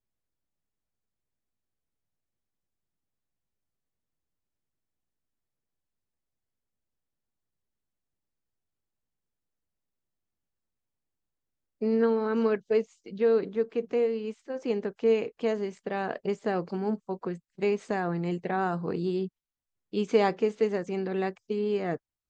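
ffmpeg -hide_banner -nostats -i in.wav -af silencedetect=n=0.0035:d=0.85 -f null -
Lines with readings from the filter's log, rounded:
silence_start: 0.00
silence_end: 11.81 | silence_duration: 11.81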